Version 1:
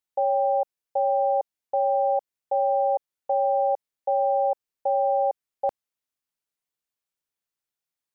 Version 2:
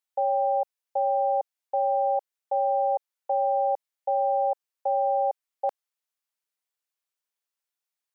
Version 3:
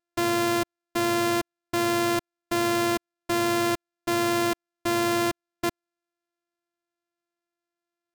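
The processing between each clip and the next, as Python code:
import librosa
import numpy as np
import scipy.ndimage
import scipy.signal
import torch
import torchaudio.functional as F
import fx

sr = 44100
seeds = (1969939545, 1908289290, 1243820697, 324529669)

y1 = scipy.signal.sosfilt(scipy.signal.butter(2, 540.0, 'highpass', fs=sr, output='sos'), x)
y2 = np.r_[np.sort(y1[:len(y1) // 128 * 128].reshape(-1, 128), axis=1).ravel(), y1[len(y1) // 128 * 128:]]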